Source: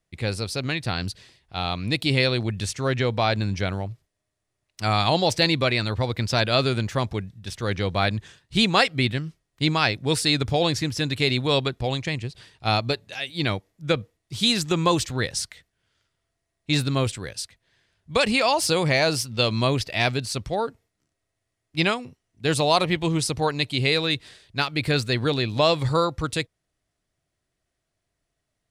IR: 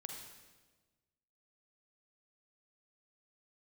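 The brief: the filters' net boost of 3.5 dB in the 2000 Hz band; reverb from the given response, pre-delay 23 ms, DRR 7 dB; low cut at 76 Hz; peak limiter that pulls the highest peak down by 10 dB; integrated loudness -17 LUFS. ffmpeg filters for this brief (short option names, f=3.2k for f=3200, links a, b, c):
-filter_complex "[0:a]highpass=76,equalizer=f=2k:t=o:g=4.5,alimiter=limit=-11.5dB:level=0:latency=1,asplit=2[a][b];[1:a]atrim=start_sample=2205,adelay=23[c];[b][c]afir=irnorm=-1:irlink=0,volume=-4dB[d];[a][d]amix=inputs=2:normalize=0,volume=7dB"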